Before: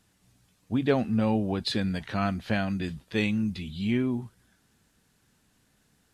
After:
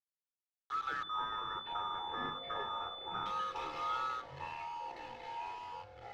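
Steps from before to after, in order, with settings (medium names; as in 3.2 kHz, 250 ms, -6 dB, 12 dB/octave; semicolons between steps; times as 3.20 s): split-band scrambler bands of 1 kHz; high-pass 140 Hz 24 dB/octave; peaking EQ 860 Hz -6.5 dB 2.2 oct; compression 2:1, threshold -54 dBFS, peak gain reduction 16.5 dB; bit crusher 8-bit; ever faster or slower copies 214 ms, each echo -5 st, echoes 3, each echo -6 dB; distance through air 220 m; reverberation RT60 0.50 s, pre-delay 15 ms, DRR 10 dB; 1.03–3.26 s: class-D stage that switches slowly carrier 3.5 kHz; trim +4.5 dB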